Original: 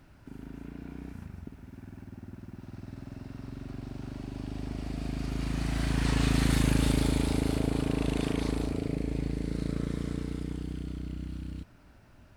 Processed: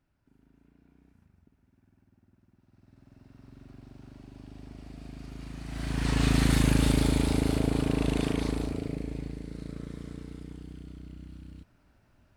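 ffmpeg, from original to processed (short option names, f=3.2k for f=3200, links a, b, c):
-af "volume=2dB,afade=t=in:st=2.67:d=0.93:silence=0.316228,afade=t=in:st=5.65:d=0.63:silence=0.266073,afade=t=out:st=8.16:d=1.3:silence=0.334965"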